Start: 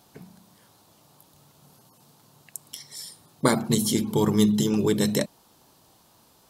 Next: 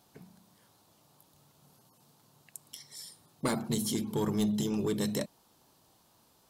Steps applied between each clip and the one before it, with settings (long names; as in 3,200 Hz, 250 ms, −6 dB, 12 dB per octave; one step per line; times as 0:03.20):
soft clipping −15 dBFS, distortion −16 dB
level −7 dB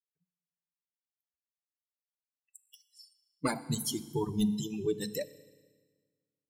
spectral dynamics exaggerated over time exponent 3
feedback delay network reverb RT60 1.5 s, low-frequency decay 1.2×, high-frequency decay 0.95×, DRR 14 dB
level +4.5 dB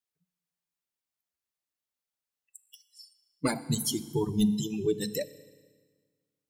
dynamic equaliser 1,100 Hz, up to −5 dB, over −50 dBFS, Q 1.3
level +4 dB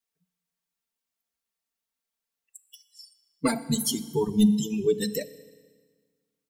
comb filter 4.4 ms, depth 65%
level +1.5 dB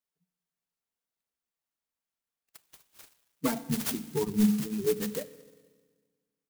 converter with an unsteady clock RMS 0.086 ms
level −4 dB